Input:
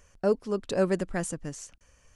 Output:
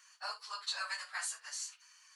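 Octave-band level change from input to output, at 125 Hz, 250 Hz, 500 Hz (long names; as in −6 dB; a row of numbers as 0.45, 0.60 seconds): below −40 dB, below −40 dB, −31.5 dB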